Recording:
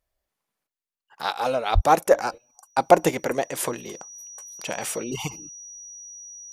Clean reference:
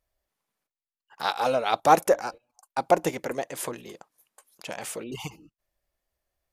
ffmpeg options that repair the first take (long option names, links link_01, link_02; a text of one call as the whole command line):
ffmpeg -i in.wav -filter_complex "[0:a]bandreject=frequency=5800:width=30,asplit=3[link_01][link_02][link_03];[link_01]afade=type=out:start_time=1.74:duration=0.02[link_04];[link_02]highpass=frequency=140:width=0.5412,highpass=frequency=140:width=1.3066,afade=type=in:start_time=1.74:duration=0.02,afade=type=out:start_time=1.86:duration=0.02[link_05];[link_03]afade=type=in:start_time=1.86:duration=0.02[link_06];[link_04][link_05][link_06]amix=inputs=3:normalize=0,asetnsamples=nb_out_samples=441:pad=0,asendcmd='2.11 volume volume -5.5dB',volume=0dB" out.wav